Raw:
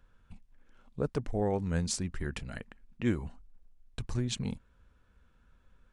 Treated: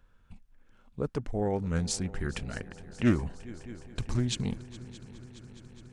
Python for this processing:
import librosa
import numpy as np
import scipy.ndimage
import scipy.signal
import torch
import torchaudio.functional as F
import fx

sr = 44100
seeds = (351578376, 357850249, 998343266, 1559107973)

p1 = fx.rider(x, sr, range_db=10, speed_s=2.0)
p2 = p1 + fx.echo_heads(p1, sr, ms=208, heads='second and third', feedback_pct=73, wet_db=-20, dry=0)
p3 = fx.doppler_dist(p2, sr, depth_ms=0.25)
y = F.gain(torch.from_numpy(p3), 1.5).numpy()